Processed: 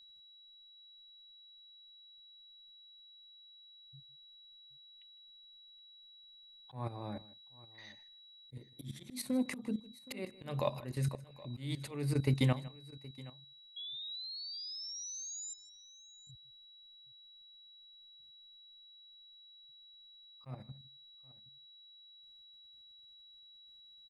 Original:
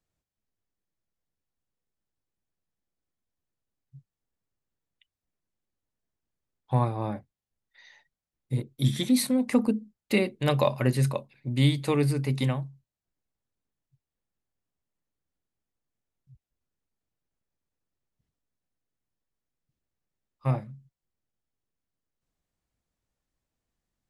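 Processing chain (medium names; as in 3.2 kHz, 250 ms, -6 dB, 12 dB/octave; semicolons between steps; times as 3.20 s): level held to a coarse grid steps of 14 dB; whistle 3.9 kHz -57 dBFS; slow attack 385 ms; painted sound rise, 13.76–15.54 s, 3.3–7.3 kHz -45 dBFS; on a send: multi-tap echo 156/771 ms -19.5/-20 dB; on the sum: trim +1 dB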